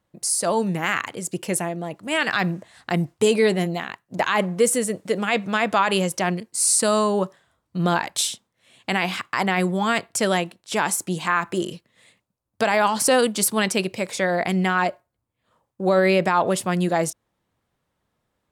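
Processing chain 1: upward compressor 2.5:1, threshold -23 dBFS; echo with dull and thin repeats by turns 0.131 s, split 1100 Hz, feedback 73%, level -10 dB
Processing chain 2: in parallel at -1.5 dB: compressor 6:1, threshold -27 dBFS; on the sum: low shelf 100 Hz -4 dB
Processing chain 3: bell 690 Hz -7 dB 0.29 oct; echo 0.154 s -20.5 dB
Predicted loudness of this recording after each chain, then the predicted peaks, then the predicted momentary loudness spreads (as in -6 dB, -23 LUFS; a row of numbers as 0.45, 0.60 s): -22.0, -20.0, -22.5 LUFS; -6.5, -5.0, -8.0 dBFS; 14, 8, 9 LU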